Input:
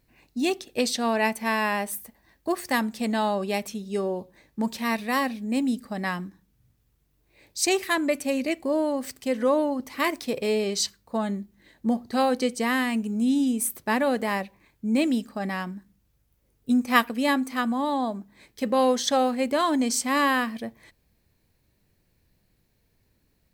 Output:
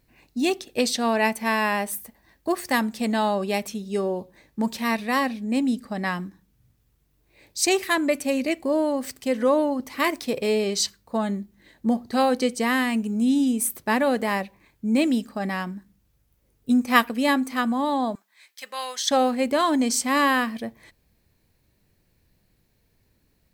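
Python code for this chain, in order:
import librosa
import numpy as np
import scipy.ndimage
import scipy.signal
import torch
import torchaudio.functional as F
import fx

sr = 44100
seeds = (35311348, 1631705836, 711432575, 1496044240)

y = fx.high_shelf(x, sr, hz=11000.0, db=-7.0, at=(4.91, 6.16))
y = fx.highpass(y, sr, hz=1500.0, slope=12, at=(18.15, 19.11))
y = y * librosa.db_to_amplitude(2.0)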